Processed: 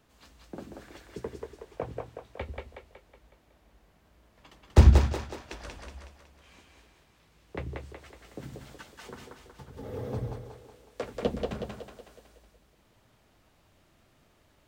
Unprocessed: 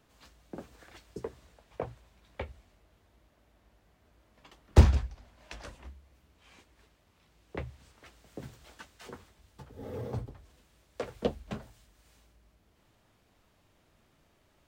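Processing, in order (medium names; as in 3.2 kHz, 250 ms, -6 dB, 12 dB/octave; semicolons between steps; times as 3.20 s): two-band feedback delay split 300 Hz, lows 85 ms, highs 185 ms, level -3 dB; trim +1 dB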